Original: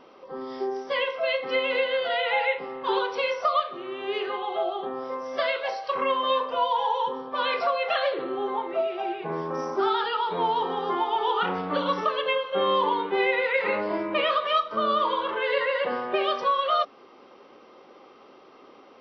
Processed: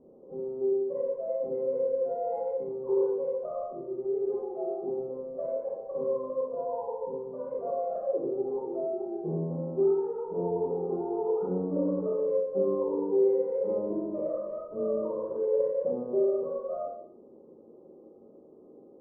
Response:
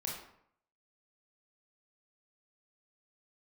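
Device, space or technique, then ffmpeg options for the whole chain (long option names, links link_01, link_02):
next room: -filter_complex "[0:a]lowpass=frequency=500:width=0.5412,lowpass=frequency=500:width=1.3066[link_01];[1:a]atrim=start_sample=2205[link_02];[link_01][link_02]afir=irnorm=-1:irlink=0,volume=1dB"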